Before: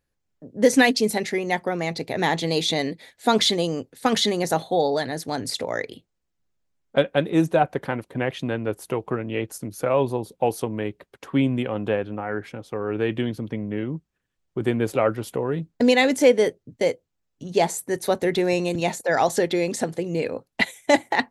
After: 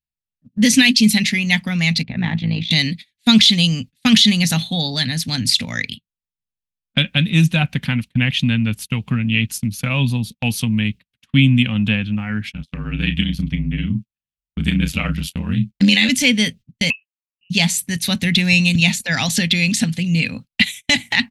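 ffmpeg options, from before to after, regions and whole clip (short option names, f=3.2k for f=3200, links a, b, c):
-filter_complex "[0:a]asettb=1/sr,asplit=3[a][b][c];[a]atrim=end=2.034[d];[b]atrim=start=2.03:end=2.71,asetpts=PTS-STARTPTS,afade=t=in:d=0.004:c=qsin,afade=t=out:st=0.676:d=0.004:c=qsin,lowpass=1.4k,tremolo=f=56:d=0.71[e];[c]atrim=start=2.706[f];[d][e]acrossfade=d=0.004:c1=hsin:c2=qsin[g];[g][f]acrossfade=d=0.004:c1=qsin:c2=hsin,asettb=1/sr,asplit=3[h][i][j];[h]atrim=end=12.524[k];[i]atrim=start=12.52:end=16.09,asetpts=PTS-STARTPTS,afade=t=in:d=0.004:c=qsin,afade=t=out:st=3.566:d=0.004:c=qsin,aeval=exprs='val(0)*sin(2*PI*45*n/s)':c=same,asplit=2[l][m];[m]adelay=33,volume=-10dB[n];[l][n]amix=inputs=2:normalize=0,atrim=end_sample=157437[o];[j]atrim=start=16.086[p];[k][o]acrossfade=d=0.004:c1=hsin:c2=qsin[q];[q][p]acrossfade=d=0.004:c1=qsin:c2=hsin,asettb=1/sr,asplit=3[r][s][t];[r]atrim=end=16.904[u];[s]atrim=start=16.9:end=17.5,asetpts=PTS-STARTPTS,afade=t=in:d=0.004:c=qsin,afade=t=out:st=0.596:d=0.004:c=qsin,highpass=f=1.1k:p=1,lowpass=f=2.6k:t=q:w=0.5098,lowpass=f=2.6k:t=q:w=0.6013,lowpass=f=2.6k:t=q:w=0.9,lowpass=f=2.6k:t=q:w=2.563,afreqshift=-3100[v];[t]atrim=start=17.496[w];[u][v]acrossfade=d=0.004:c1=hsin:c2=qsin[x];[x][w]acrossfade=d=0.004:c1=qsin:c2=hsin,agate=range=-29dB:threshold=-37dB:ratio=16:detection=peak,firequalizer=gain_entry='entry(230,0);entry(350,-28);entry(2600,5);entry(7100,-4)':delay=0.05:min_phase=1,alimiter=level_in=14.5dB:limit=-1dB:release=50:level=0:latency=1,volume=-1dB"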